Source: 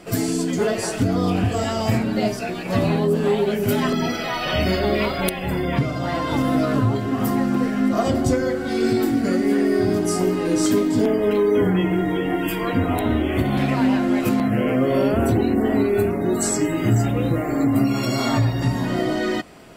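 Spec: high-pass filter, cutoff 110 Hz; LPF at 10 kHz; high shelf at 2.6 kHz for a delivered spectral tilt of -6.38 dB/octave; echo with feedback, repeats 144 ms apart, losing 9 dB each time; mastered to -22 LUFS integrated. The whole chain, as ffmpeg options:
-af "highpass=110,lowpass=10000,highshelf=f=2600:g=-5,aecho=1:1:144|288|432|576:0.355|0.124|0.0435|0.0152,volume=0.891"

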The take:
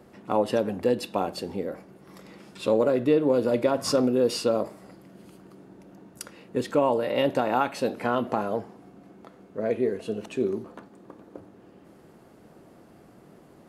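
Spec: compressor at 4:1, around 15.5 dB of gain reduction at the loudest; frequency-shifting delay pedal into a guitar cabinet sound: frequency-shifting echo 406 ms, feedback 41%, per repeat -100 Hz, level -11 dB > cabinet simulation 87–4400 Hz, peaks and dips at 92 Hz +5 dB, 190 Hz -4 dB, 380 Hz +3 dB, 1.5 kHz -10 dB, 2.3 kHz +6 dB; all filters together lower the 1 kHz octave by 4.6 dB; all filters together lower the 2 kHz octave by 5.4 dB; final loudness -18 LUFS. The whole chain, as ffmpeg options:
-filter_complex "[0:a]equalizer=f=1000:t=o:g=-4.5,equalizer=f=2000:t=o:g=-5,acompressor=threshold=0.0126:ratio=4,asplit=5[s0][s1][s2][s3][s4];[s1]adelay=406,afreqshift=-100,volume=0.282[s5];[s2]adelay=812,afreqshift=-200,volume=0.116[s6];[s3]adelay=1218,afreqshift=-300,volume=0.0473[s7];[s4]adelay=1624,afreqshift=-400,volume=0.0195[s8];[s0][s5][s6][s7][s8]amix=inputs=5:normalize=0,highpass=87,equalizer=f=92:t=q:w=4:g=5,equalizer=f=190:t=q:w=4:g=-4,equalizer=f=380:t=q:w=4:g=3,equalizer=f=1500:t=q:w=4:g=-10,equalizer=f=2300:t=q:w=4:g=6,lowpass=f=4400:w=0.5412,lowpass=f=4400:w=1.3066,volume=15"

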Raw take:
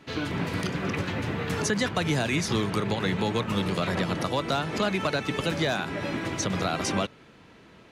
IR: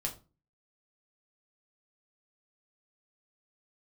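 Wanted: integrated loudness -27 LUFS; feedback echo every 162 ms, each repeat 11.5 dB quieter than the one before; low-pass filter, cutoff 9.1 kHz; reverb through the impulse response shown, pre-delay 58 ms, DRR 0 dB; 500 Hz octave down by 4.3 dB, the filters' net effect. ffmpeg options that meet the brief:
-filter_complex "[0:a]lowpass=9100,equalizer=f=500:t=o:g=-5.5,aecho=1:1:162|324|486:0.266|0.0718|0.0194,asplit=2[s0][s1];[1:a]atrim=start_sample=2205,adelay=58[s2];[s1][s2]afir=irnorm=-1:irlink=0,volume=0.841[s3];[s0][s3]amix=inputs=2:normalize=0,volume=0.75"

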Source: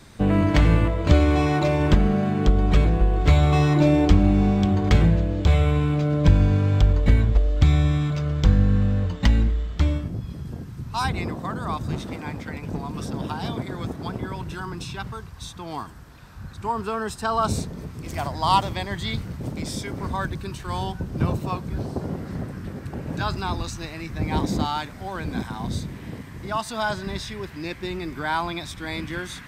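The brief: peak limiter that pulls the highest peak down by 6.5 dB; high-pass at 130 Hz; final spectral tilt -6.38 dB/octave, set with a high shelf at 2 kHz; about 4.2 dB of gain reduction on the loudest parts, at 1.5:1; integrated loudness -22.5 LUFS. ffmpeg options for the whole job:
-af "highpass=130,highshelf=f=2000:g=-6.5,acompressor=threshold=0.0447:ratio=1.5,volume=2.51,alimiter=limit=0.299:level=0:latency=1"

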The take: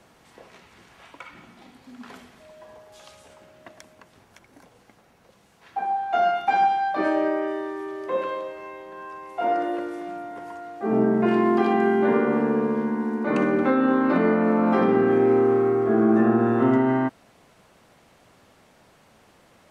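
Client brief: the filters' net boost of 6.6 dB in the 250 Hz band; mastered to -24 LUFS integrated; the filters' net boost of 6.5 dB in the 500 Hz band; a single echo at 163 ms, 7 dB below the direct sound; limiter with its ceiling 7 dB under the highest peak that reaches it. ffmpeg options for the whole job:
-af "equalizer=f=250:t=o:g=6,equalizer=f=500:t=o:g=6.5,alimiter=limit=0.376:level=0:latency=1,aecho=1:1:163:0.447,volume=0.398"

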